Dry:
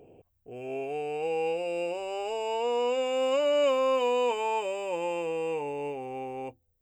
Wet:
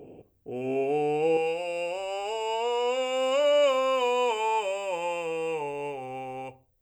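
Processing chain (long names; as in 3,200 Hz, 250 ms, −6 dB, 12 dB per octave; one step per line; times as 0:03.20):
parametric band 260 Hz +6 dB 1.6 octaves, from 0:01.37 −8.5 dB
rectangular room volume 220 cubic metres, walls furnished, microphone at 0.33 metres
level +3.5 dB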